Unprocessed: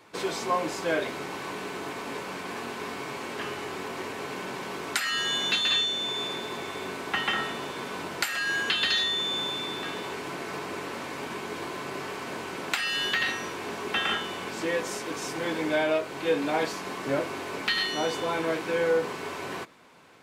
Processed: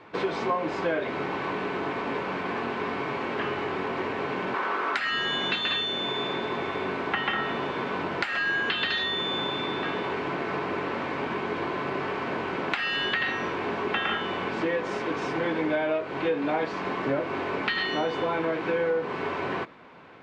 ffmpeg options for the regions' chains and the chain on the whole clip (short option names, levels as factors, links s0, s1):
-filter_complex "[0:a]asettb=1/sr,asplit=3[s0][s1][s2];[s0]atrim=end=4.544[s3];[s1]atrim=start=4.54:end=4.96,asetpts=PTS-STARTPTS,afade=t=in:d=0.004:c=qsin,afade=t=out:st=0.416:d=0.004:c=qsin,highpass=330,equalizer=f=1300:t=o:w=0.84:g=10[s4];[s2]atrim=start=4.956[s5];[s3][s4]acrossfade=d=0.004:c1=hsin:c2=qsin[s6];[s6][s5]acrossfade=d=0.004:c1=qsin:c2=hsin,lowpass=3200,aemphasis=mode=reproduction:type=cd,acompressor=threshold=0.0316:ratio=4,volume=2"